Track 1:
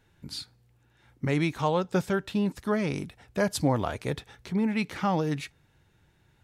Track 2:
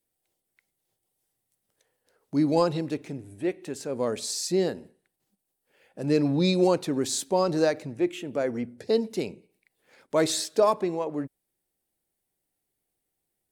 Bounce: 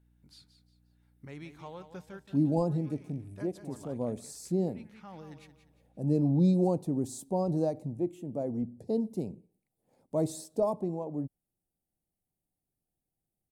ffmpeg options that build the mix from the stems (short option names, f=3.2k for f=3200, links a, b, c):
-filter_complex "[0:a]aeval=exprs='val(0)+0.00501*(sin(2*PI*60*n/s)+sin(2*PI*2*60*n/s)/2+sin(2*PI*3*60*n/s)/3+sin(2*PI*4*60*n/s)/4+sin(2*PI*5*60*n/s)/5)':c=same,volume=-19dB,asplit=2[a][b];[b]volume=-11dB[c];[1:a]firequalizer=gain_entry='entry(170,0);entry(410,-11);entry(750,-7);entry(1500,-30);entry(8900,-12)':delay=0.05:min_phase=1,volume=2dB,asplit=2[d][e];[e]apad=whole_len=283844[f];[a][f]sidechaincompress=threshold=-36dB:ratio=8:attack=44:release=738[g];[c]aecho=0:1:177|354|531|708|885:1|0.33|0.109|0.0359|0.0119[h];[g][d][h]amix=inputs=3:normalize=0"